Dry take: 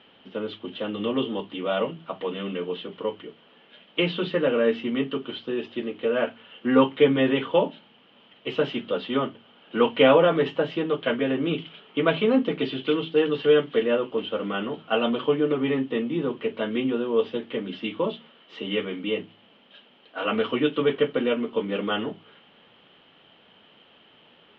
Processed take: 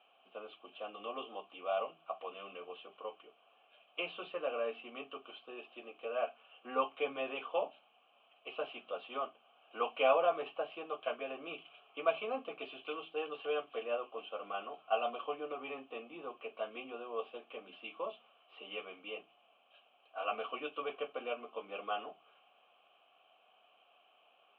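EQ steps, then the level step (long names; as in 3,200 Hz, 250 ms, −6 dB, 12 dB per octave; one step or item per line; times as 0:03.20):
formant filter a
high-frequency loss of the air 260 metres
spectral tilt +3 dB per octave
+1.5 dB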